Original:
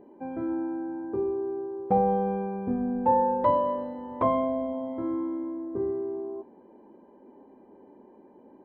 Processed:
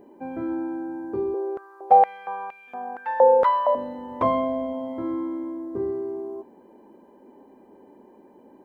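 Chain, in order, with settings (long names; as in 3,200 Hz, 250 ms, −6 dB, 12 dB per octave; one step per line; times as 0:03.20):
high-shelf EQ 2,700 Hz +11.5 dB
0:01.34–0:03.75: high-pass on a step sequencer 4.3 Hz 530–2,600 Hz
level +1.5 dB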